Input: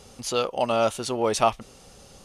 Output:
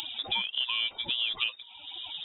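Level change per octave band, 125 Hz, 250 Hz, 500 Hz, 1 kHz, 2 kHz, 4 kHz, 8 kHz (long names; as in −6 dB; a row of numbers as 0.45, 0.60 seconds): −19.0 dB, −22.0 dB, −30.5 dB, −17.5 dB, +2.0 dB, +7.5 dB, below −25 dB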